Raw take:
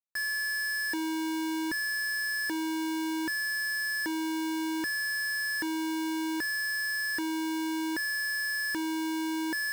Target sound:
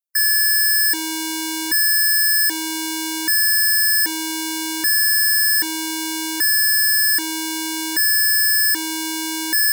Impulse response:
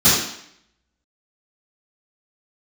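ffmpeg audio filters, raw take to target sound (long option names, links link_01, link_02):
-af "afftdn=noise_reduction=18:noise_floor=-46,crystalizer=i=8:c=0,volume=2dB"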